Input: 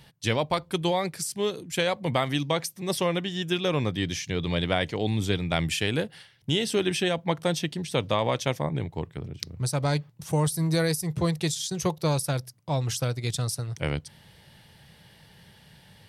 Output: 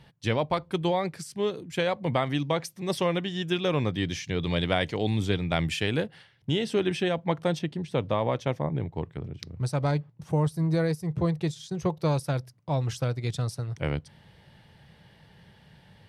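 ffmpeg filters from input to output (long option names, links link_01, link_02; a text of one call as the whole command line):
ffmpeg -i in.wav -af "asetnsamples=nb_out_samples=441:pad=0,asendcmd='2.65 lowpass f 3900;4.43 lowpass f 8100;5.22 lowpass f 3600;6.06 lowpass f 2100;7.59 lowpass f 1200;8.96 lowpass f 2200;9.91 lowpass f 1100;11.97 lowpass f 2100',lowpass=frequency=2200:poles=1" out.wav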